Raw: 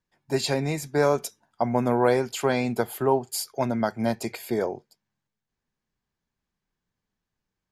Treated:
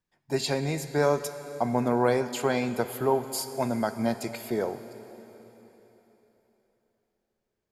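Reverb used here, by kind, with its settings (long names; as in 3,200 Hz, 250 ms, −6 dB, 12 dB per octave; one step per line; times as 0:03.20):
dense smooth reverb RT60 3.8 s, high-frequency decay 1×, DRR 10.5 dB
level −2.5 dB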